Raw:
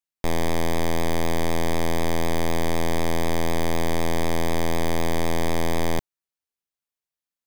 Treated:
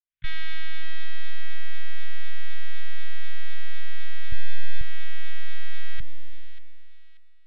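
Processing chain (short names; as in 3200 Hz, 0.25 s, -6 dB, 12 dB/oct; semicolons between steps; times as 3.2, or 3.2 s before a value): opening faded in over 0.58 s; Schroeder reverb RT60 2.3 s, combs from 30 ms, DRR 18 dB; in parallel at +3 dB: compressor, threshold -24 dBFS, peak gain reduction 9 dB; on the sum: LPC vocoder at 8 kHz pitch kept; vocal rider 0.5 s; soft clip -12 dBFS, distortion -18 dB; 4.32–4.81 comb 1.2 ms, depth 53%; elliptic band-stop 140–1600 Hz, stop band 50 dB; on a send: thin delay 0.586 s, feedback 35%, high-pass 1900 Hz, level -10 dB; on the sum: gain +2 dB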